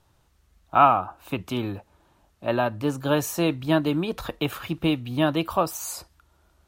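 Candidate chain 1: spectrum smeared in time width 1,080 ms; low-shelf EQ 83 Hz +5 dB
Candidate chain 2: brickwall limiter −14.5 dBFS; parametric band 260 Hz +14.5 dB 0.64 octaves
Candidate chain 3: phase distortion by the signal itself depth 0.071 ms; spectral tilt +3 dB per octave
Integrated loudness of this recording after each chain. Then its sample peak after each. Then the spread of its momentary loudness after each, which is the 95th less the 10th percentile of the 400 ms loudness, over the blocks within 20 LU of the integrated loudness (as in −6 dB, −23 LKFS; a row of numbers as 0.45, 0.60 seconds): −32.0, −21.0, −25.0 LKFS; −18.0, −7.0, −3.5 dBFS; 8, 13, 13 LU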